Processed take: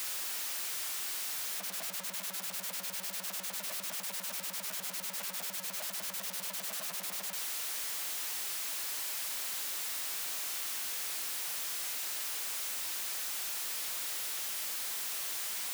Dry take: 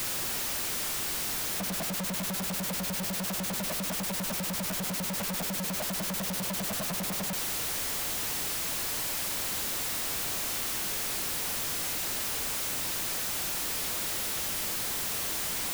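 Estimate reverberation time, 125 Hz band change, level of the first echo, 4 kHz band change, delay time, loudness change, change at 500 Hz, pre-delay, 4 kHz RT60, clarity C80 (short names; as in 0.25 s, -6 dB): none, under -20 dB, none, -5.0 dB, none, -5.0 dB, -12.0 dB, none, none, none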